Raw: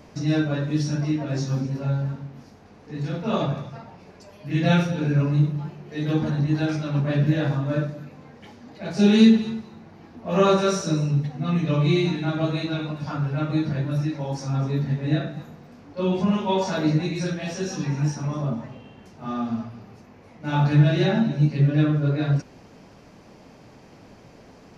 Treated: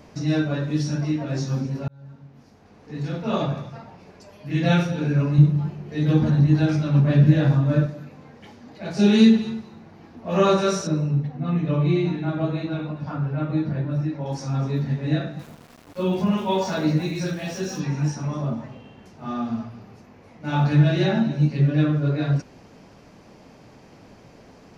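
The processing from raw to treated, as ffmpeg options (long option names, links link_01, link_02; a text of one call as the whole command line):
ffmpeg -i in.wav -filter_complex "[0:a]asettb=1/sr,asplit=3[link_01][link_02][link_03];[link_01]atrim=end=5.384[link_04];[link_02]atrim=start=5.38:end=7.86,asetpts=PTS-STARTPTS,afade=type=in:duration=0.004:curve=qsin,afade=type=out:start_time=2.476:duration=0.004:curve=qsin,lowshelf=frequency=200:gain=9.5[link_05];[link_03]atrim=start=7.856[link_06];[link_04][link_05]acrossfade=duration=0.004:curve1=hsin:curve2=qsin[link_07];[link_07][link_06]acrossfade=duration=0.004:curve1=qsin:curve2=hsin,asettb=1/sr,asplit=3[link_08][link_09][link_10];[link_08]atrim=end=10.874[link_11];[link_09]atrim=start=10.87:end=14.26,asetpts=PTS-STARTPTS,afade=type=in:duration=0.004:curve=qsin,afade=type=out:start_time=3.386:duration=0.004:curve=qsin,lowpass=frequency=1500:poles=1[link_12];[link_10]atrim=start=14.256[link_13];[link_11][link_12]acrossfade=duration=0.004:curve1=hsin:curve2=qsin[link_14];[link_14][link_13]acrossfade=duration=0.004:curve1=qsin:curve2=hsin,asettb=1/sr,asplit=3[link_15][link_16][link_17];[link_15]atrim=end=15.394[link_18];[link_16]atrim=start=15.39:end=17.8,asetpts=PTS-STARTPTS,afade=type=in:duration=0.004:curve=qsin,afade=type=out:start_time=2.406:duration=0.004:curve=qsin,aeval=exprs='val(0)*gte(abs(val(0)),0.00708)':channel_layout=same[link_19];[link_17]atrim=start=17.796[link_20];[link_18][link_19]acrossfade=duration=0.004:curve1=hsin:curve2=qsin[link_21];[link_21][link_20]acrossfade=duration=0.004:curve1=qsin:curve2=hsin,asplit=2[link_22][link_23];[link_22]atrim=end=1.88,asetpts=PTS-STARTPTS,afade=type=out:start_time=1.876:duration=0.004:curve=hsin[link_24];[link_23]atrim=start=1.88,asetpts=PTS-STARTPTS,afade=type=in:duration=1.05[link_25];[link_24][link_25]concat=n=2:v=0:a=1" out.wav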